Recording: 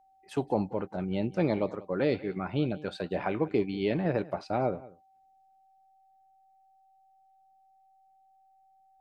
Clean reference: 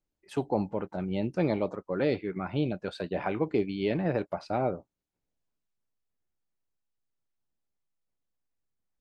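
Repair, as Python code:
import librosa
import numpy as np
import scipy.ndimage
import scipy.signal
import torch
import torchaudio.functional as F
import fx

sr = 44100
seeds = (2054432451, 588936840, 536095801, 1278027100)

y = fx.notch(x, sr, hz=770.0, q=30.0)
y = fx.fix_echo_inverse(y, sr, delay_ms=188, level_db=-20.0)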